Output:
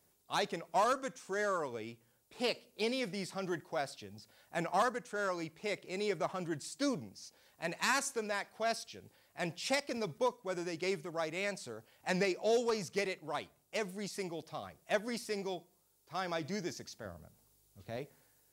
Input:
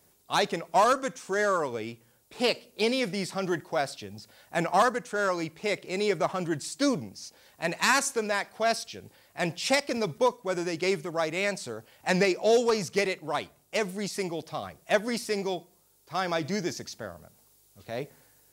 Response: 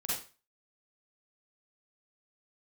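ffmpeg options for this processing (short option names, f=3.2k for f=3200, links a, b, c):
-filter_complex "[0:a]asettb=1/sr,asplit=3[a][b][c];[a]atrim=end=17.054[d];[b]atrim=start=17.05:end=17.97,asetpts=PTS-STARTPTS,afade=t=in:d=0.004:c=qsin,afade=t=out:st=0.916:d=0.004:c=qsin,lowshelf=f=250:g=8[e];[c]atrim=start=17.966[f];[d][e]acrossfade=d=0.004:c1=hsin:c2=qsin[g];[g][f]acrossfade=d=0.004:c1=qsin:c2=hsin,volume=-8.5dB"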